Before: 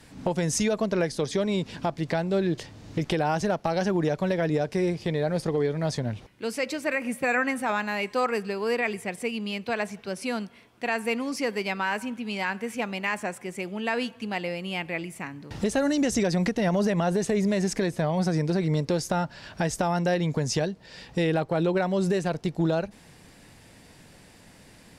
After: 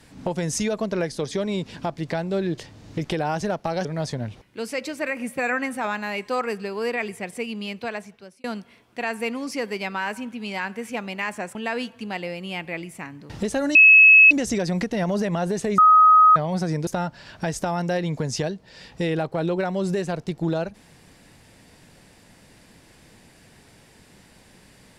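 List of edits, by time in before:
3.85–5.70 s: delete
9.60–10.29 s: fade out
13.40–13.76 s: delete
15.96 s: add tone 2.58 kHz -7.5 dBFS 0.56 s
17.43–18.01 s: bleep 1.26 kHz -9.5 dBFS
18.52–19.04 s: delete

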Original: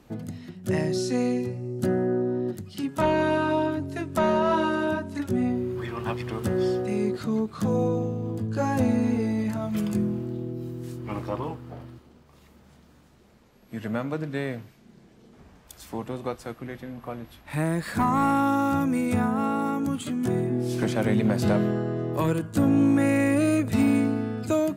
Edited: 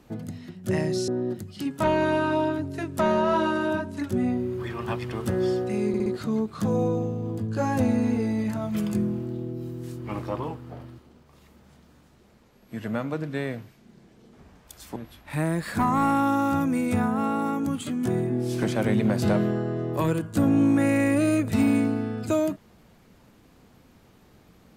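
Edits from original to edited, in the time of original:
1.08–2.26 s: delete
7.06 s: stutter 0.06 s, 4 plays
15.96–17.16 s: delete

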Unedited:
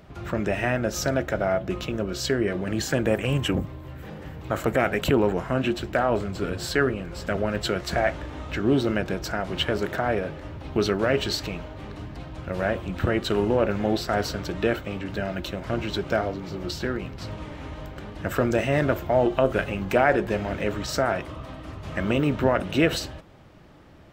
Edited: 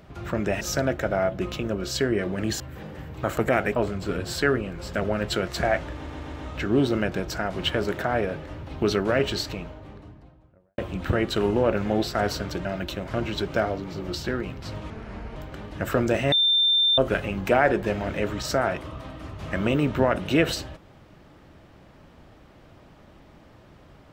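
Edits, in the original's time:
0.61–0.90 s: delete
2.89–3.87 s: delete
5.03–6.09 s: delete
8.27 s: stutter 0.13 s, 4 plays
11.10–12.72 s: studio fade out
14.59–15.21 s: delete
17.46–17.80 s: speed 74%
18.76–19.42 s: bleep 3.58 kHz -17 dBFS

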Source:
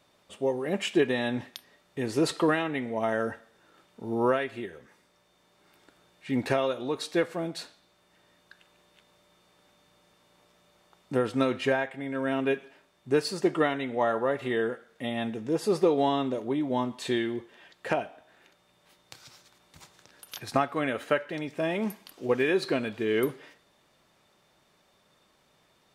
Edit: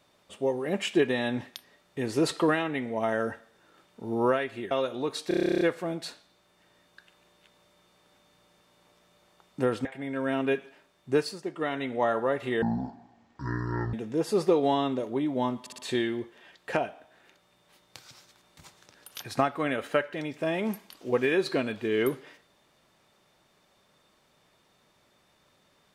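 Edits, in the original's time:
4.71–6.57 s: delete
7.14 s: stutter 0.03 s, 12 plays
11.38–11.84 s: delete
13.15–13.80 s: dip -10 dB, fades 0.24 s
14.61–15.28 s: speed 51%
16.95 s: stutter 0.06 s, 4 plays

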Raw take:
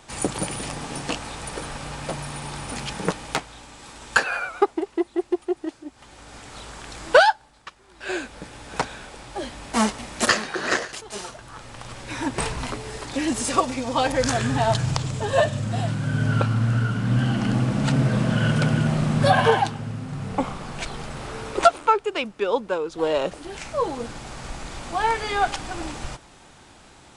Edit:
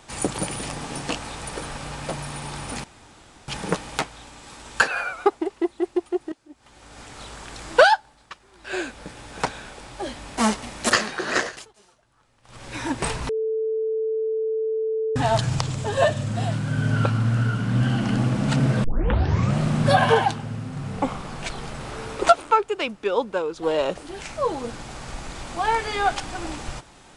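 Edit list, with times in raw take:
2.84 s: insert room tone 0.64 s
5.68–6.39 s: fade in, from -16 dB
10.84–12.05 s: dip -22.5 dB, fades 0.26 s
12.65–14.52 s: bleep 441 Hz -21.5 dBFS
18.20 s: tape start 0.75 s

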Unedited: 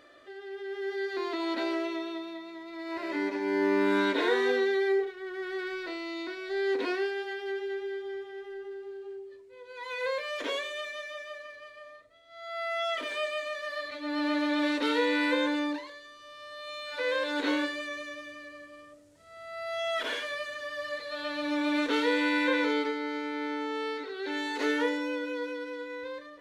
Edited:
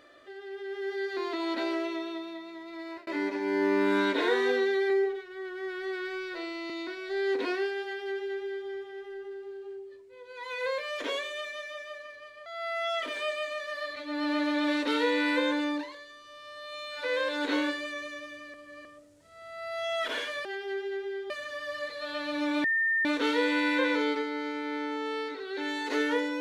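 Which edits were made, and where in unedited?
2.71–3.07 s: fade out equal-power
4.90–6.10 s: stretch 1.5×
7.23–8.08 s: copy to 20.40 s
11.86–12.41 s: delete
18.49–18.80 s: reverse
21.74 s: add tone 1.81 kHz -23.5 dBFS 0.41 s

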